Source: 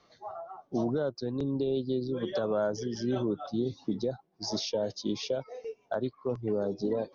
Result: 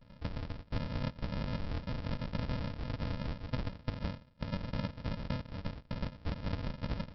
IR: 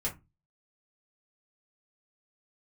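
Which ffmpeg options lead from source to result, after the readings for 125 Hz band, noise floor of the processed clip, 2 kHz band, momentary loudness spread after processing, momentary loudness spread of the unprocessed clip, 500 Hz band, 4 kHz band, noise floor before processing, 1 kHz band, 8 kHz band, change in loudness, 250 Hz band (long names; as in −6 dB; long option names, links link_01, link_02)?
+2.5 dB, −60 dBFS, +0.5 dB, 5 LU, 7 LU, −15.5 dB, −7.5 dB, −68 dBFS, −4.5 dB, can't be measured, −7.0 dB, −8.0 dB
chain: -filter_complex "[0:a]bandreject=frequency=80.02:width_type=h:width=4,bandreject=frequency=160.04:width_type=h:width=4,bandreject=frequency=240.06:width_type=h:width=4,bandreject=frequency=320.08:width_type=h:width=4,asplit=2[link_01][link_02];[link_02]equalizer=frequency=300:width_type=o:width=0.85:gain=5.5[link_03];[1:a]atrim=start_sample=2205,adelay=57[link_04];[link_03][link_04]afir=irnorm=-1:irlink=0,volume=-24dB[link_05];[link_01][link_05]amix=inputs=2:normalize=0,afftfilt=real='hypot(re,im)*cos(2*PI*random(0))':imag='hypot(re,im)*sin(2*PI*random(1))':win_size=512:overlap=0.75,acompressor=threshold=-49dB:ratio=4,aresample=11025,acrusher=samples=29:mix=1:aa=0.000001,aresample=44100,volume=13.5dB"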